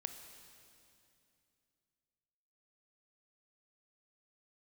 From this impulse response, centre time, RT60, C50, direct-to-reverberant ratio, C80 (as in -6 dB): 37 ms, 2.7 s, 7.5 dB, 7.0 dB, 8.5 dB